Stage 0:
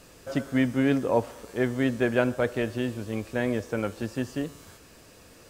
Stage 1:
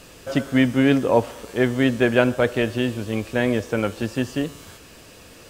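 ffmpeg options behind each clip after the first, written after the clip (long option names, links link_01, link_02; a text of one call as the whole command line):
ffmpeg -i in.wav -af "equalizer=frequency=3000:width_type=o:width=0.69:gain=4.5,volume=6dB" out.wav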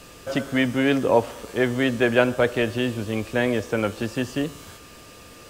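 ffmpeg -i in.wav -filter_complex "[0:a]acrossover=split=340[link_01][link_02];[link_01]alimiter=limit=-20.5dB:level=0:latency=1[link_03];[link_03][link_02]amix=inputs=2:normalize=0,aeval=exprs='val(0)+0.00224*sin(2*PI*1200*n/s)':channel_layout=same" out.wav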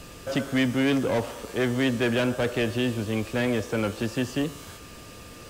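ffmpeg -i in.wav -filter_complex "[0:a]acrossover=split=260|2800[link_01][link_02][link_03];[link_01]acompressor=mode=upward:threshold=-41dB:ratio=2.5[link_04];[link_02]asoftclip=type=tanh:threshold=-23.5dB[link_05];[link_04][link_05][link_03]amix=inputs=3:normalize=0" out.wav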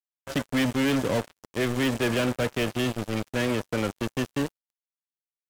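ffmpeg -i in.wav -af "aeval=exprs='val(0)+0.5*0.0141*sgn(val(0))':channel_layout=same,acrusher=bits=3:mix=0:aa=0.5,volume=-2.5dB" out.wav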